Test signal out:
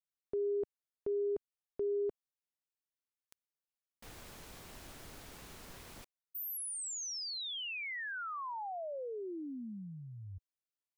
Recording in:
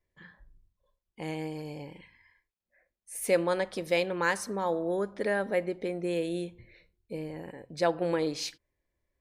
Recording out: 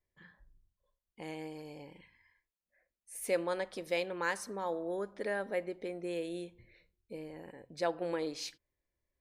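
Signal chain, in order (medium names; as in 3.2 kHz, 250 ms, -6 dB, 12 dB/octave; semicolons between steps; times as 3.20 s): dynamic bell 130 Hz, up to -7 dB, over -49 dBFS, Q 1.1; trim -6 dB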